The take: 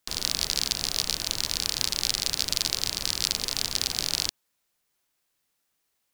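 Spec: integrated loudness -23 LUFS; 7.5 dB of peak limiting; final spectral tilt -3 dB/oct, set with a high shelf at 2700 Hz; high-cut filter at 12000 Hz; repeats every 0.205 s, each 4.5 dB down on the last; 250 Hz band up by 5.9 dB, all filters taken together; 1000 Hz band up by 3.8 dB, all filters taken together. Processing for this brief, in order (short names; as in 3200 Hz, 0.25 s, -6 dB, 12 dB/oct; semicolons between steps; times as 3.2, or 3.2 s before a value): LPF 12000 Hz; bell 250 Hz +7.5 dB; bell 1000 Hz +5 dB; high shelf 2700 Hz -3.5 dB; limiter -13 dBFS; feedback echo 0.205 s, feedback 60%, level -4.5 dB; gain +7.5 dB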